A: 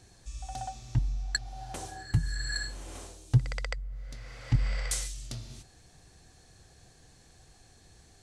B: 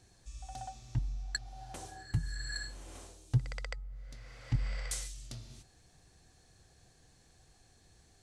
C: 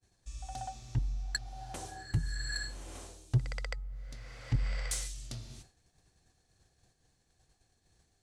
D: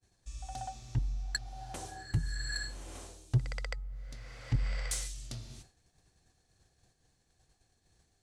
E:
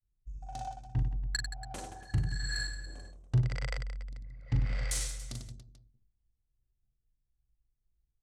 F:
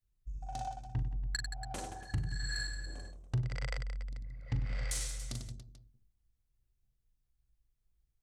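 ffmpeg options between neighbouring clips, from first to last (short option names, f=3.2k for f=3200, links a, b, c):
-af "bandreject=f=423.3:t=h:w=4,bandreject=f=846.6:t=h:w=4,bandreject=f=1.2699k:t=h:w=4,volume=-6dB"
-filter_complex "[0:a]agate=range=-33dB:threshold=-54dB:ratio=3:detection=peak,asplit=2[a][b];[b]asoftclip=type=tanh:threshold=-30.5dB,volume=-3dB[c];[a][c]amix=inputs=2:normalize=0,volume=-1.5dB"
-af anull
-af "anlmdn=0.1,aecho=1:1:40|96|174.4|284.2|437.8:0.631|0.398|0.251|0.158|0.1"
-af "acompressor=threshold=-37dB:ratio=2,volume=1.5dB"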